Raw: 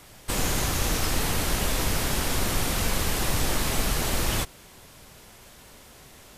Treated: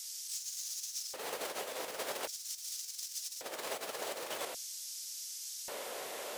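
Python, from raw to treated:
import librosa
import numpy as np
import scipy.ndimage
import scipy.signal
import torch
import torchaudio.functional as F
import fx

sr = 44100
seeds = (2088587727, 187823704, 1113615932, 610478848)

y = fx.tracing_dist(x, sr, depth_ms=0.028)
y = fx.over_compress(y, sr, threshold_db=-35.0, ratio=-1.0)
y = fx.filter_lfo_highpass(y, sr, shape='square', hz=0.44, low_hz=510.0, high_hz=5600.0, q=2.4)
y = F.gain(torch.from_numpy(y), -3.5).numpy()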